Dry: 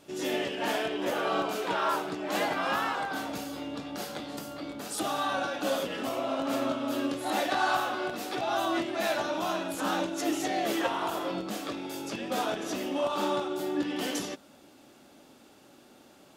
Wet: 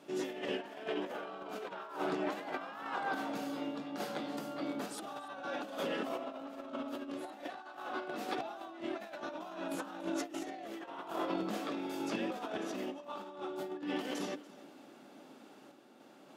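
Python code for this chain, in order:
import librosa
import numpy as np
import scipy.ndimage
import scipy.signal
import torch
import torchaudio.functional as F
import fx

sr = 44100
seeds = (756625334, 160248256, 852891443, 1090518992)

p1 = scipy.signal.sosfilt(scipy.signal.butter(4, 160.0, 'highpass', fs=sr, output='sos'), x)
p2 = fx.high_shelf(p1, sr, hz=3500.0, db=-10.5)
p3 = fx.hum_notches(p2, sr, base_hz=60, count=10)
p4 = fx.over_compress(p3, sr, threshold_db=-35.0, ratio=-0.5)
p5 = fx.tremolo_random(p4, sr, seeds[0], hz=3.5, depth_pct=55)
p6 = p5 + fx.echo_single(p5, sr, ms=287, db=-20.0, dry=0)
y = p6 * librosa.db_to_amplitude(-1.5)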